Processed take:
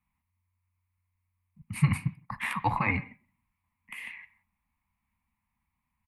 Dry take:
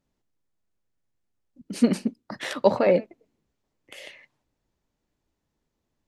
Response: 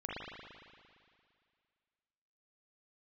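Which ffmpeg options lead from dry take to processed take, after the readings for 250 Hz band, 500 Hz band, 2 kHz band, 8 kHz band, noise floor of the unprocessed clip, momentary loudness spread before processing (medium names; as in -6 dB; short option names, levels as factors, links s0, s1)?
-9.5 dB, -23.0 dB, +4.0 dB, -4.5 dB, -80 dBFS, 22 LU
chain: -filter_complex "[0:a]afreqshift=-91,firequalizer=gain_entry='entry(150,0);entry(220,4);entry(400,-26);entry(1000,13);entry(1500,-4);entry(2200,13);entry(3200,-6);entry(5900,-15);entry(9500,5)':delay=0.05:min_phase=1,asplit=2[s0][s1];[1:a]atrim=start_sample=2205,afade=t=out:st=0.23:d=0.01,atrim=end_sample=10584,lowshelf=f=290:g=-10[s2];[s1][s2]afir=irnorm=-1:irlink=0,volume=0.168[s3];[s0][s3]amix=inputs=2:normalize=0,volume=0.631"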